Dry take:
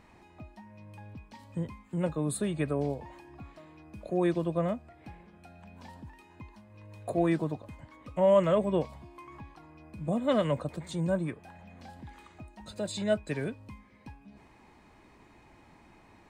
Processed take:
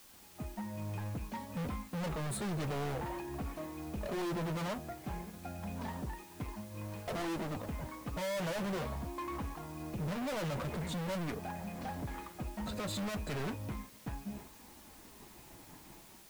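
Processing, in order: high shelf 2600 Hz -12 dB; expander -50 dBFS; AGC gain up to 9 dB; hard clip -38 dBFS, distortion 2 dB; requantised 10-bit, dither triangular; flange 0.54 Hz, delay 3.4 ms, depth 3.5 ms, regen -49%; gain +6 dB

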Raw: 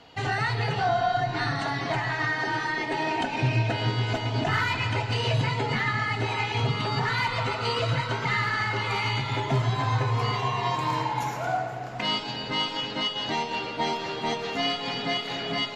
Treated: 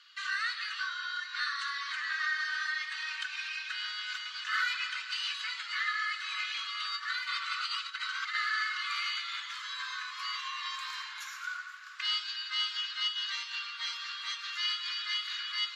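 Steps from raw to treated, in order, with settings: 6.93–8.35 negative-ratio compressor -28 dBFS, ratio -0.5; rippled Chebyshev high-pass 1100 Hz, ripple 6 dB

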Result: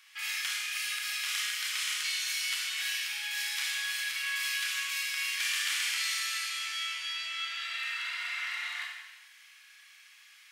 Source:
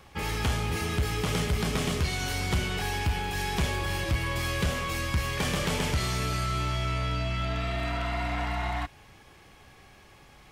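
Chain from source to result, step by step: inverse Chebyshev high-pass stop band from 480 Hz, stop band 60 dB; Schroeder reverb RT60 1.1 s, combs from 26 ms, DRR -0.5 dB

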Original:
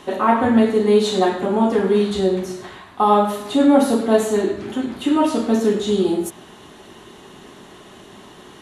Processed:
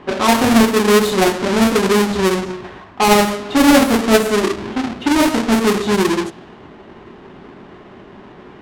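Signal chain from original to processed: half-waves squared off; low-pass opened by the level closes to 2100 Hz, open at -9 dBFS; gain -1 dB

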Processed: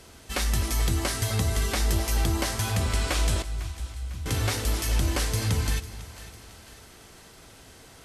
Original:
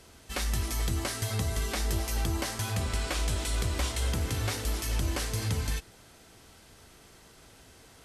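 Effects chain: 3.42–4.26 passive tone stack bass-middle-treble 10-0-1; split-band echo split 650 Hz, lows 0.251 s, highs 0.501 s, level -15.5 dB; gain +4.5 dB

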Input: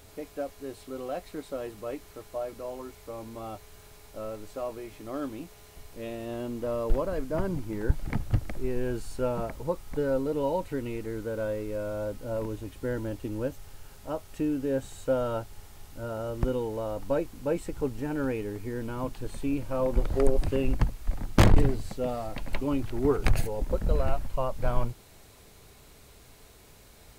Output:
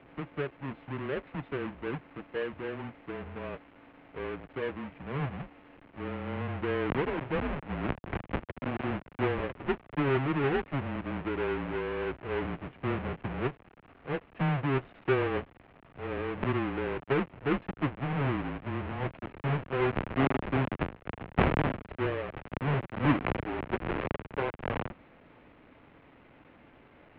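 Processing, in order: half-waves squared off; mistuned SSB -140 Hz 210–2900 Hz; gain -3 dB

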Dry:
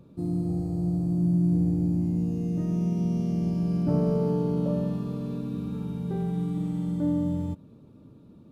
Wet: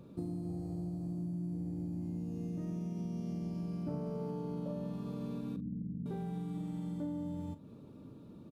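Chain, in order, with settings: 5.56–6.06 inverse Chebyshev low-pass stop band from 960 Hz, stop band 60 dB; compressor 6:1, threshold -35 dBFS, peak gain reduction 14.5 dB; low shelf 150 Hz -5.5 dB; doubler 42 ms -13 dB; gain +1 dB

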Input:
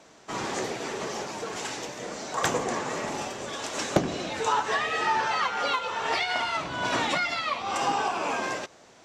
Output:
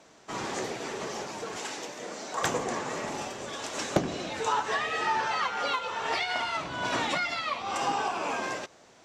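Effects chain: 1.57–2.41 HPF 190 Hz 12 dB/oct; gain -2.5 dB

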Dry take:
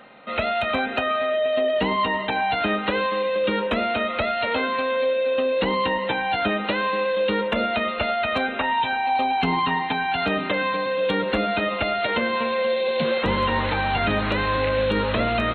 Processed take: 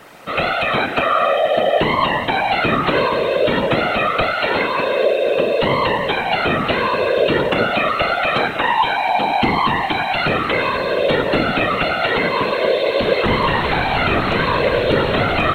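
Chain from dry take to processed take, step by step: buzz 400 Hz, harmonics 40, -58 dBFS -3 dB/oct; Schroeder reverb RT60 0.44 s, combs from 25 ms, DRR 8.5 dB; whisperiser; gain +5.5 dB

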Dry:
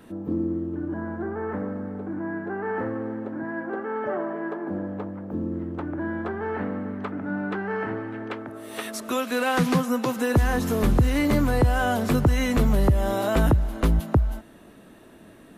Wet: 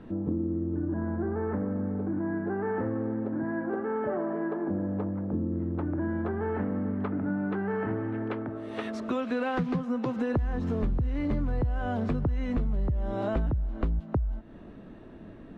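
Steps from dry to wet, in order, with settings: LPF 4300 Hz 12 dB/oct; tilt -2.5 dB/oct; compressor 6:1, threshold -24 dBFS, peak gain reduction 16.5 dB; gain -2 dB

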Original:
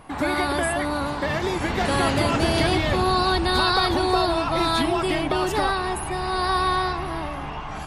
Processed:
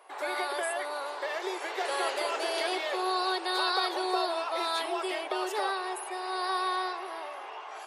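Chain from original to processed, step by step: Chebyshev high-pass 380 Hz, order 5; gain -7 dB

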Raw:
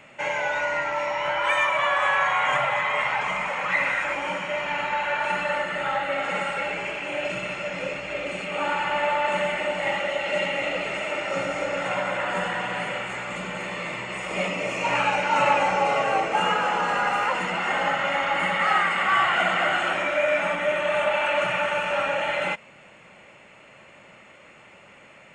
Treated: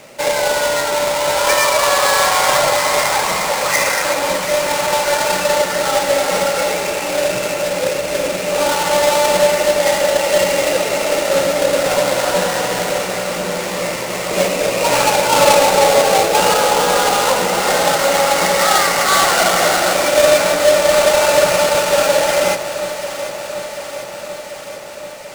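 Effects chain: half-waves squared off; ten-band EQ 500 Hz +8 dB, 4000 Hz +3 dB, 8000 Hz +6 dB; echo with dull and thin repeats by turns 0.369 s, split 1700 Hz, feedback 83%, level -10 dB; gain +1.5 dB

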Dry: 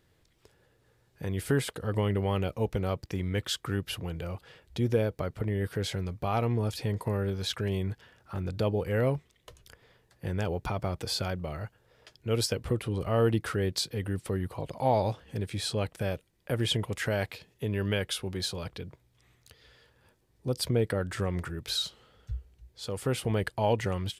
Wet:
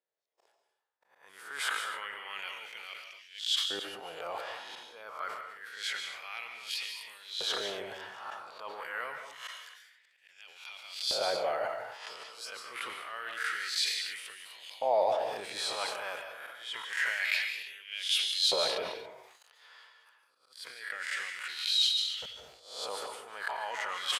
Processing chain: spectral swells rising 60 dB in 0.47 s; gate -58 dBFS, range -34 dB; high shelf 11000 Hz -9.5 dB; reverse; compressor 10:1, threshold -37 dBFS, peak gain reduction 18 dB; reverse; auto swell 0.577 s; LFO high-pass saw up 0.27 Hz 570–3500 Hz; speakerphone echo 90 ms, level -19 dB; on a send at -6 dB: reverb, pre-delay 0.136 s; on the sum: sustainer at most 48 dB/s; gain +7.5 dB

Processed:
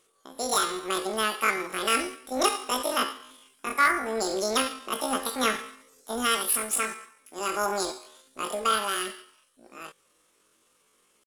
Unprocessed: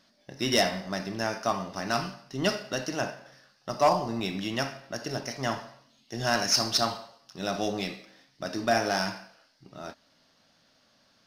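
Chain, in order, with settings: pitch shift +11.5 st; vocal rider within 4 dB 0.5 s; gain +2 dB

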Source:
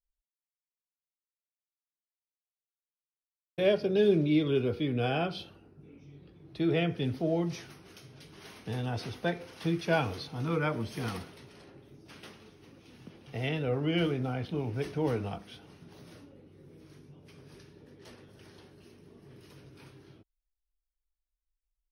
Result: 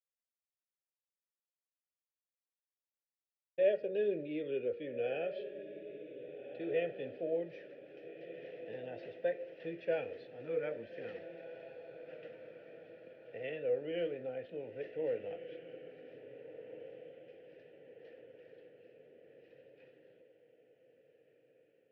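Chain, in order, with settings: vowel filter e; air absorption 220 m; diffused feedback echo 1.641 s, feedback 48%, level -11.5 dB; vibrato 0.36 Hz 19 cents; gain +4 dB

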